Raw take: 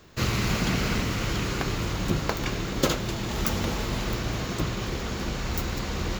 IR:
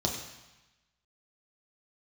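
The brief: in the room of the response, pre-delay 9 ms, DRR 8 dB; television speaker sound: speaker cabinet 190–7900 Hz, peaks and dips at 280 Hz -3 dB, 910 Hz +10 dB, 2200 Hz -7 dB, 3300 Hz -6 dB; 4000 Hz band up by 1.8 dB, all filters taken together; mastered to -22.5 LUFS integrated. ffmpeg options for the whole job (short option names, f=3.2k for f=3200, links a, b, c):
-filter_complex "[0:a]equalizer=f=4k:t=o:g=5.5,asplit=2[a][b];[1:a]atrim=start_sample=2205,adelay=9[c];[b][c]afir=irnorm=-1:irlink=0,volume=-15dB[d];[a][d]amix=inputs=2:normalize=0,highpass=f=190:w=0.5412,highpass=f=190:w=1.3066,equalizer=f=280:t=q:w=4:g=-3,equalizer=f=910:t=q:w=4:g=10,equalizer=f=2.2k:t=q:w=4:g=-7,equalizer=f=3.3k:t=q:w=4:g=-6,lowpass=f=7.9k:w=0.5412,lowpass=f=7.9k:w=1.3066,volume=5.5dB"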